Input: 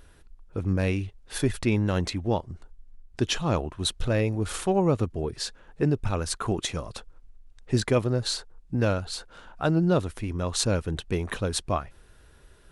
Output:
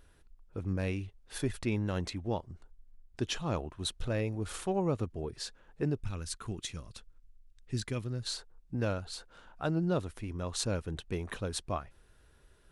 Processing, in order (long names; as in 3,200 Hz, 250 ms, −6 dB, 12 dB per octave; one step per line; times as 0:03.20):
0:06.02–0:08.27: parametric band 680 Hz −12 dB 2 octaves
level −8 dB